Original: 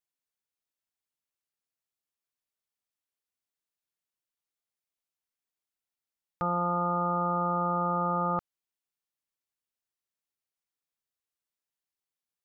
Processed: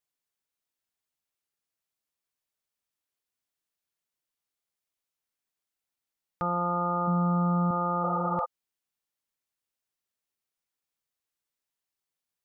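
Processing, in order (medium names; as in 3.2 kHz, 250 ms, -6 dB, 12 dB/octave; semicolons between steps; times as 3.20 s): 7.07–7.71 s: peaking EQ 180 Hz +12.5 dB 0.44 oct; 8.06–8.42 s: spectral replace 440–1600 Hz before; peak limiter -22 dBFS, peak gain reduction 5.5 dB; trim +2.5 dB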